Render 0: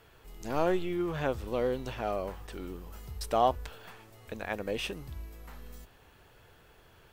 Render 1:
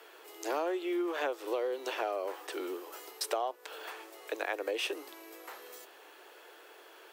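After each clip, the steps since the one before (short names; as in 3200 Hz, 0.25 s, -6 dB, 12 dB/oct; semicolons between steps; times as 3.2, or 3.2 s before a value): steep high-pass 310 Hz 72 dB/oct; compressor 12:1, threshold -36 dBFS, peak gain reduction 17 dB; gain +6.5 dB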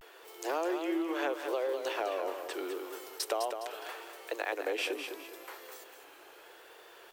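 vibrato 0.77 Hz 95 cents; lo-fi delay 0.206 s, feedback 35%, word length 10-bit, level -7 dB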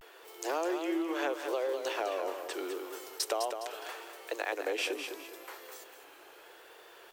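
dynamic EQ 6500 Hz, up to +4 dB, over -56 dBFS, Q 1.2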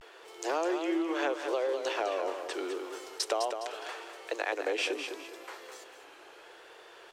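LPF 7800 Hz 12 dB/oct; gain +2 dB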